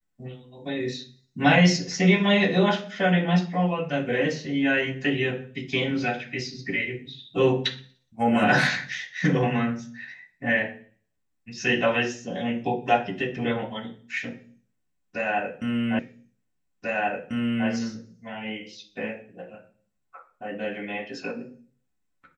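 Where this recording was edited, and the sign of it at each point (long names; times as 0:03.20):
0:15.99: the same again, the last 1.69 s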